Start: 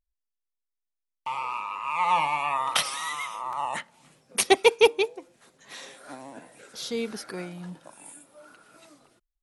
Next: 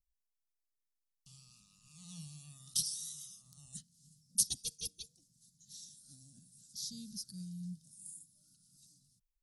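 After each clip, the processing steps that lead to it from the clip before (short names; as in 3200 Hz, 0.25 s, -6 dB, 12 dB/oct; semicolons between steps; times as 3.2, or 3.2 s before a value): elliptic band-stop 170–5000 Hz, stop band 40 dB; gain -2 dB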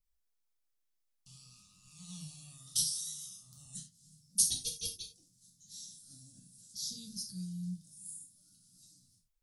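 non-linear reverb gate 0.12 s falling, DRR 0.5 dB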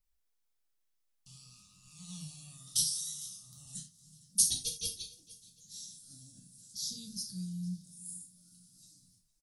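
feedback echo 0.457 s, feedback 39%, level -21.5 dB; gain +1.5 dB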